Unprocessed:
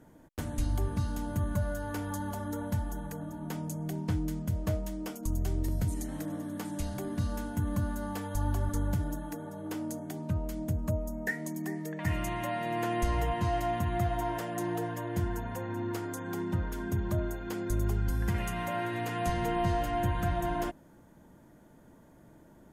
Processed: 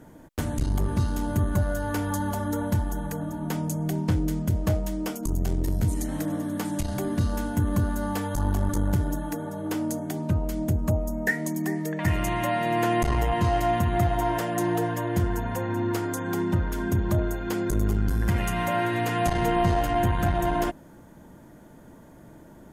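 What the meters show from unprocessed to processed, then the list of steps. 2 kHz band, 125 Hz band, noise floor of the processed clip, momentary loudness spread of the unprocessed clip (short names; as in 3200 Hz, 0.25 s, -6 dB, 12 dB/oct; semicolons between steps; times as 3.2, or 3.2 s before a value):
+7.5 dB, +6.5 dB, -49 dBFS, 7 LU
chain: core saturation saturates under 160 Hz; gain +8 dB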